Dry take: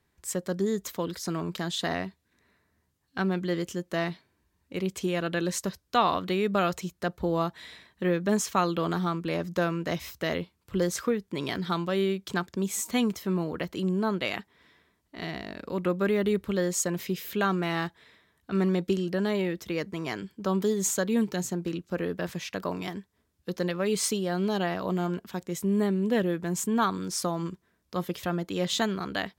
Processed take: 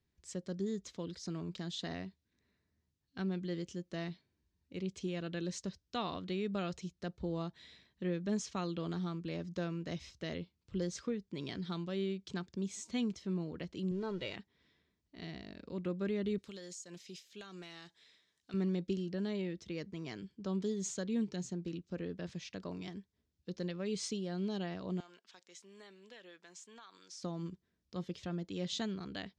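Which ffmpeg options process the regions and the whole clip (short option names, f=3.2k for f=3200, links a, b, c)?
-filter_complex "[0:a]asettb=1/sr,asplit=3[a][b][c];[a]atrim=end=13.914[d];[b]atrim=start=13.91:end=14.35,asetpts=PTS-STARTPTS,afade=t=in:d=0.004:c=qsin,afade=t=out:st=0.436:d=0.004:c=qsin,aeval=exprs='val(0)+0.5*0.0106*sgn(val(0))':c=same,highshelf=f=4.7k:g=-8,aecho=1:1:2.1:0.56,atrim=end_sample=19404[e];[c]atrim=start=14.346[f];[d][e]acrossfade=d=0.004:c1=hsin:c2=qsin[g];[g][f]acrossfade=d=0.004:c1=qsin:c2=hsin,asettb=1/sr,asplit=3[h][i][j];[h]atrim=end=16.384[k];[i]atrim=start=16.38:end=18.54,asetpts=PTS-STARTPTS,afade=t=in:d=0.004:c=qsin,afade=t=out:st=2.156:d=0.004:c=qsin,aemphasis=mode=production:type=riaa,acompressor=threshold=-33dB:ratio=5:attack=3.2:release=140:knee=1:detection=peak[l];[j]atrim=start=18.536[m];[k][l]acrossfade=d=0.004:c1=hsin:c2=qsin[n];[n][m]acrossfade=d=0.004:c1=qsin:c2=hsin,asettb=1/sr,asplit=3[o][p][q];[o]atrim=end=25.004[r];[p]atrim=start=25:end=27.23,asetpts=PTS-STARTPTS,afade=t=in:d=0.004:c=qsin,afade=t=out:st=2.226:d=0.004:c=qsin,highpass=1k,acompressor=threshold=-36dB:ratio=4:attack=3.2:release=140:knee=1:detection=peak[s];[q]atrim=start=27.226[t];[r][s]acrossfade=d=0.004:c1=hsin:c2=qsin[u];[u][t]acrossfade=d=0.004:c1=qsin:c2=hsin,lowpass=f=6.3k:w=0.5412,lowpass=f=6.3k:w=1.3066,equalizer=f=1.1k:t=o:w=2.5:g=-11,volume=-6.5dB"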